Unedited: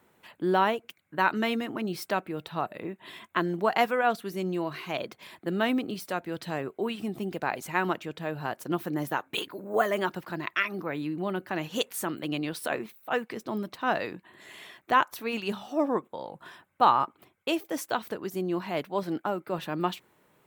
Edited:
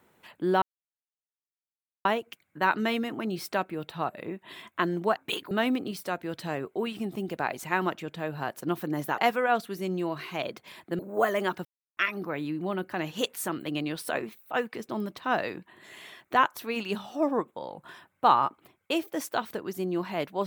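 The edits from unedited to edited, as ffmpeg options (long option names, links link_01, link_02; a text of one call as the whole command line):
ffmpeg -i in.wav -filter_complex "[0:a]asplit=8[link_01][link_02][link_03][link_04][link_05][link_06][link_07][link_08];[link_01]atrim=end=0.62,asetpts=PTS-STARTPTS,afade=type=out:start_time=0.616:duration=0.004:curve=hsin,apad=pad_dur=1.43[link_09];[link_02]atrim=start=0.62:end=3.732,asetpts=PTS-STARTPTS,afade=type=in:duration=0.004:curve=hsin[link_10];[link_03]atrim=start=9.208:end=9.562[link_11];[link_04]atrim=start=5.538:end=9.212[link_12];[link_05]atrim=start=3.728:end=5.542[link_13];[link_06]atrim=start=9.558:end=10.22,asetpts=PTS-STARTPTS,afade=type=out:start_time=0.658:duration=0.004:curve=hsin[link_14];[link_07]atrim=start=10.22:end=10.54,asetpts=PTS-STARTPTS,volume=0[link_15];[link_08]atrim=start=10.54,asetpts=PTS-STARTPTS,afade=type=in:duration=0.004:curve=hsin[link_16];[link_09][link_10]concat=n=2:v=0:a=1[link_17];[link_17][link_11]acrossfade=duration=0.004:curve1=hsin:curve2=hsin[link_18];[link_18][link_12]acrossfade=duration=0.004:curve1=hsin:curve2=hsin[link_19];[link_19][link_13]acrossfade=duration=0.004:curve1=hsin:curve2=hsin[link_20];[link_14][link_15][link_16]concat=n=3:v=0:a=1[link_21];[link_20][link_21]acrossfade=duration=0.004:curve1=hsin:curve2=hsin" out.wav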